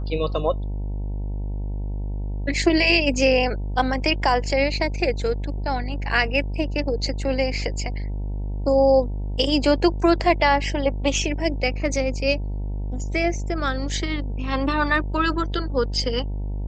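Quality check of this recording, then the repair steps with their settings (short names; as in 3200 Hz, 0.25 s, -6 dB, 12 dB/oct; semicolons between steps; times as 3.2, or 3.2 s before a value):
buzz 50 Hz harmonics 19 -27 dBFS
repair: de-hum 50 Hz, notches 19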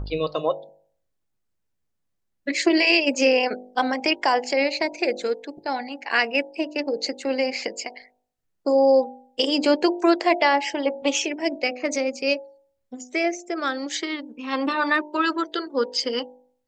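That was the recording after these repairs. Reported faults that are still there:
none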